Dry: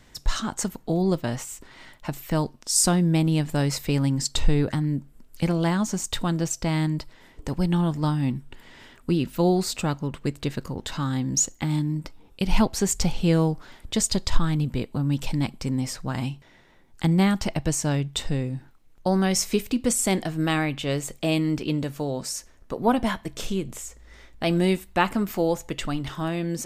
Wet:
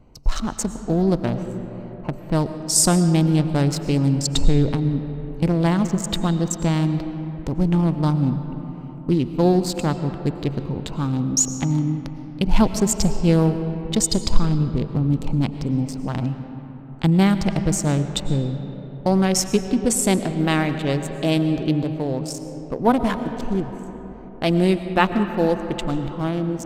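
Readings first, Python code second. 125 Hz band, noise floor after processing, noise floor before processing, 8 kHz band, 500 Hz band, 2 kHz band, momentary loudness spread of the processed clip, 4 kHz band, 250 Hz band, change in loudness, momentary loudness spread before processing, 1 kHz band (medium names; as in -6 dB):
+4.5 dB, -36 dBFS, -53 dBFS, +2.5 dB, +4.0 dB, +1.5 dB, 12 LU, +1.5 dB, +4.5 dB, +4.0 dB, 11 LU, +3.5 dB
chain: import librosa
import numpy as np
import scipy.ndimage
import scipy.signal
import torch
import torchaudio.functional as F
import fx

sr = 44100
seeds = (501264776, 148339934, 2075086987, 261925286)

y = fx.wiener(x, sr, points=25)
y = fx.rev_freeverb(y, sr, rt60_s=4.3, hf_ratio=0.4, predelay_ms=70, drr_db=9.0)
y = y * librosa.db_to_amplitude(4.0)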